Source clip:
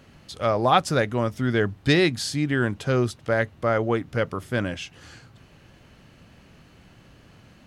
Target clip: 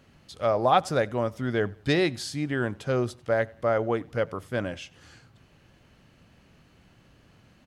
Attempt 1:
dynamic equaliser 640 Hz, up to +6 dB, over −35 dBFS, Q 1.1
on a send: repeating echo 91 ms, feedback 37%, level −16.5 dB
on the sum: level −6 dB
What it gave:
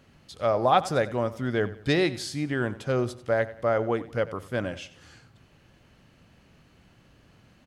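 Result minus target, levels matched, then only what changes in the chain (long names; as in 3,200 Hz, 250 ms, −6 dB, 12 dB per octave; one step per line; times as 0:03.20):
echo-to-direct +8.5 dB
change: repeating echo 91 ms, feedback 37%, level −25 dB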